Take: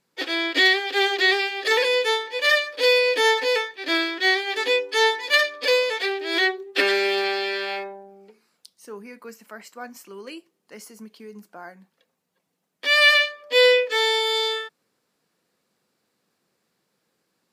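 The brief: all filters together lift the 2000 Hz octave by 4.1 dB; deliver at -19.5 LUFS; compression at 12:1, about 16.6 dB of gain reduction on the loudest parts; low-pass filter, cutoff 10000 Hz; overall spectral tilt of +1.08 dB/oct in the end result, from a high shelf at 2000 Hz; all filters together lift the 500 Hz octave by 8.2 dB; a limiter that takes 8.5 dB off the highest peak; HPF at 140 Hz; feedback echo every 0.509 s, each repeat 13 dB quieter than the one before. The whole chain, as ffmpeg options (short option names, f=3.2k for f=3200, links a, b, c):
-af "highpass=140,lowpass=10k,equalizer=f=500:t=o:g=9,highshelf=f=2k:g=-5,equalizer=f=2k:t=o:g=7,acompressor=threshold=-22dB:ratio=12,alimiter=limit=-20dB:level=0:latency=1,aecho=1:1:509|1018|1527:0.224|0.0493|0.0108,volume=9dB"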